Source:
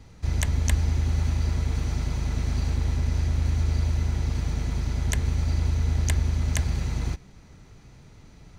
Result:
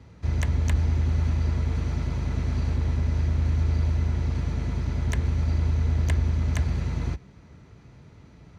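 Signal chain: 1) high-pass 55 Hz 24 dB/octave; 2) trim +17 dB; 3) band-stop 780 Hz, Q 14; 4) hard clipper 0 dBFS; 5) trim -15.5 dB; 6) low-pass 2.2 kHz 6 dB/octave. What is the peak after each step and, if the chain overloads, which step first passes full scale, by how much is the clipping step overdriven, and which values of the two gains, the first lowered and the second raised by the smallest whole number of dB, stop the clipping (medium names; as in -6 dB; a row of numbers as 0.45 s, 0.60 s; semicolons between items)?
-10.0 dBFS, +7.0 dBFS, +7.0 dBFS, 0.0 dBFS, -15.5 dBFS, -15.5 dBFS; step 2, 7.0 dB; step 2 +10 dB, step 5 -8.5 dB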